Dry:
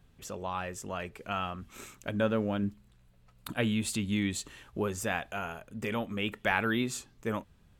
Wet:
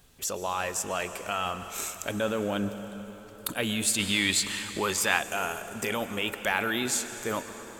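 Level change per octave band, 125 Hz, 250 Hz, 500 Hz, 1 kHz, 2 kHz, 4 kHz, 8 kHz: -2.5, -1.0, +2.5, +4.5, +5.5, +10.0, +12.0 dB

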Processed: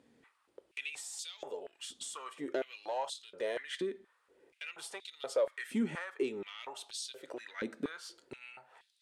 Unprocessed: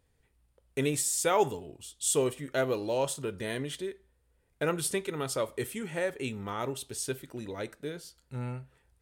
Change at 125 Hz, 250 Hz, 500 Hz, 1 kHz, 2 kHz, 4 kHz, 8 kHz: -17.5, -5.0, -7.0, -9.0, -4.5, -4.0, -13.0 dB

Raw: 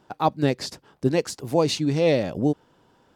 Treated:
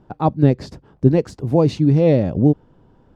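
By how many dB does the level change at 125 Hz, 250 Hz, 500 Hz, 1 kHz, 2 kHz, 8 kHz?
+11.0 dB, +7.5 dB, +4.0 dB, +1.0 dB, -4.5 dB, under -10 dB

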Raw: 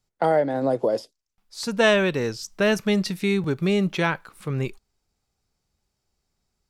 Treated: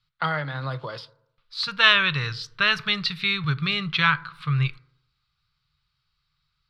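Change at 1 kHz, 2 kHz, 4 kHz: +0.5, +5.5, +8.5 dB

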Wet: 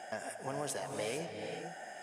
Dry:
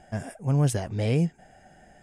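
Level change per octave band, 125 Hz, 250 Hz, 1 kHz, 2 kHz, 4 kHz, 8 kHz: -25.0, -17.5, -1.5, -1.5, -3.5, -4.0 dB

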